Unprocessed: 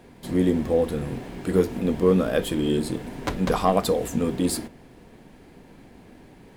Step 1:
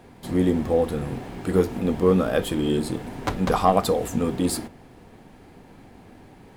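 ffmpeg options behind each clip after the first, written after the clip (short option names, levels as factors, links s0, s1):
-af "equalizer=f=100:t=o:w=0.33:g=6,equalizer=f=800:t=o:w=0.33:g=5,equalizer=f=1250:t=o:w=0.33:g=4"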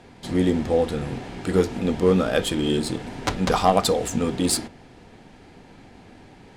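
-af "equalizer=f=7800:w=0.32:g=10.5,adynamicsmooth=sensitivity=2:basefreq=5900,bandreject=f=1100:w=16"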